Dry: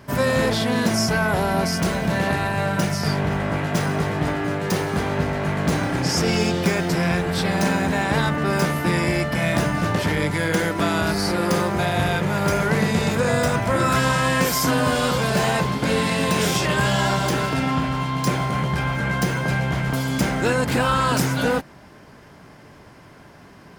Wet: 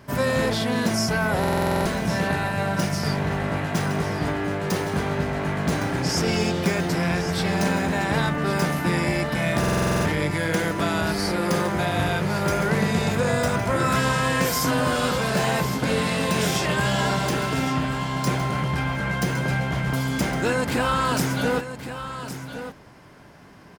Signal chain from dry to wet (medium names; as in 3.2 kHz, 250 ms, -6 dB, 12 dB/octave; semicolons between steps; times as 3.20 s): delay 1112 ms -11 dB; buffer glitch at 1.39/9.59 s, samples 2048, times 9; trim -2.5 dB